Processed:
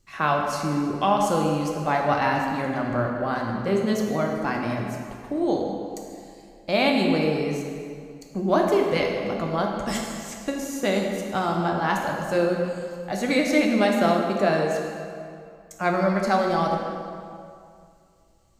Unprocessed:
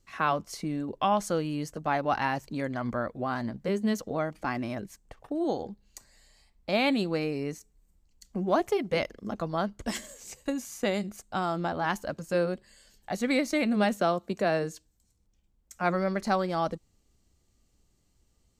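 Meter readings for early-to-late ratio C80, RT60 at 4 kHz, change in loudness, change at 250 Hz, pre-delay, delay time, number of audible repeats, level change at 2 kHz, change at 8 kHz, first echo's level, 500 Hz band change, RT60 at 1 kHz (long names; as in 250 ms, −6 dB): 3.5 dB, 1.7 s, +6.0 dB, +6.0 dB, 4 ms, no echo audible, no echo audible, +6.0 dB, +5.0 dB, no echo audible, +6.5 dB, 2.4 s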